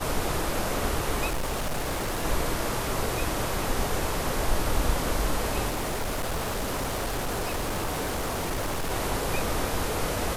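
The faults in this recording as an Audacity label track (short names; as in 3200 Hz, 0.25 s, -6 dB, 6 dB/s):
1.280000	2.250000	clipped -25 dBFS
5.680000	8.920000	clipped -25.5 dBFS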